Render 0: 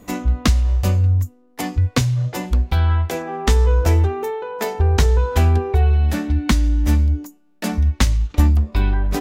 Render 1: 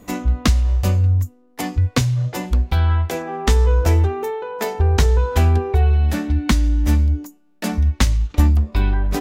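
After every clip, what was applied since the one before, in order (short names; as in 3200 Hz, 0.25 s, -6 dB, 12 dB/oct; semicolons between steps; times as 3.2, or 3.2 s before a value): nothing audible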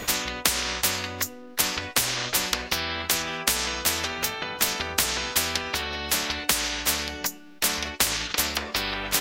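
band shelf 2900 Hz +9.5 dB 2.3 oct; spectral compressor 10:1; gain -6.5 dB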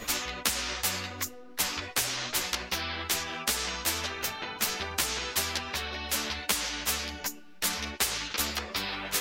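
ensemble effect; gain -2 dB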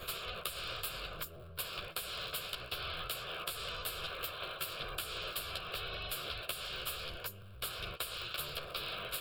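cycle switcher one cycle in 3, inverted; compressor, threshold -31 dBFS, peak gain reduction 9 dB; fixed phaser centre 1300 Hz, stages 8; gain -2 dB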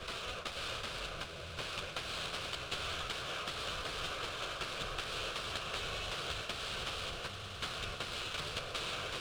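CVSD 32 kbps; swelling echo 0.105 s, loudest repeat 8, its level -16.5 dB; running maximum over 3 samples; gain +1 dB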